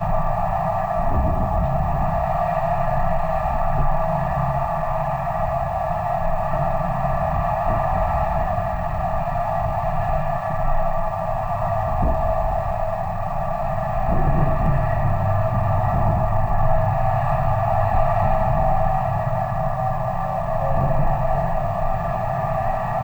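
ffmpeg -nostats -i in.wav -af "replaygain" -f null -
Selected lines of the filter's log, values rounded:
track_gain = +6.2 dB
track_peak = 0.318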